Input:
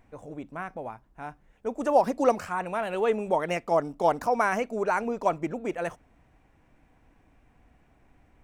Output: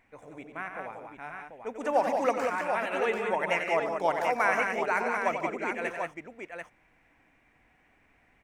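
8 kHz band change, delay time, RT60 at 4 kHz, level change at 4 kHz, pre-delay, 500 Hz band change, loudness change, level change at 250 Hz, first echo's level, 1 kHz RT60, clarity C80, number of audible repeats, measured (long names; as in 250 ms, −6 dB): −1.5 dB, 91 ms, no reverb audible, +2.0 dB, no reverb audible, −3.0 dB, −1.5 dB, −5.5 dB, −8.5 dB, no reverb audible, no reverb audible, 4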